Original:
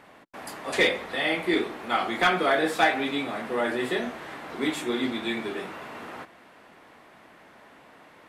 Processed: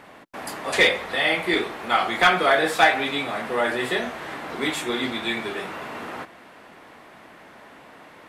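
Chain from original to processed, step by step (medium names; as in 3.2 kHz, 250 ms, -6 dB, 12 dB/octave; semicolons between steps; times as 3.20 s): dynamic bell 280 Hz, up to -7 dB, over -41 dBFS, Q 1.1; trim +5.5 dB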